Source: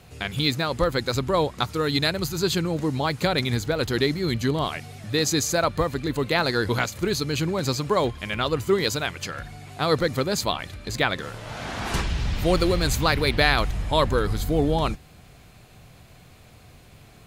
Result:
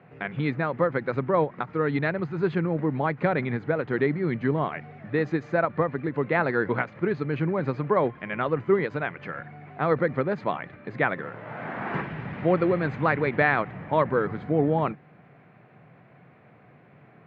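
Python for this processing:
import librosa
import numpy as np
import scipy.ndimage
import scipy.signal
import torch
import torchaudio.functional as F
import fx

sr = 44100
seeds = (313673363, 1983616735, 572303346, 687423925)

y = scipy.signal.sosfilt(scipy.signal.ellip(3, 1.0, 80, [140.0, 2000.0], 'bandpass', fs=sr, output='sos'), x)
y = fx.end_taper(y, sr, db_per_s=310.0)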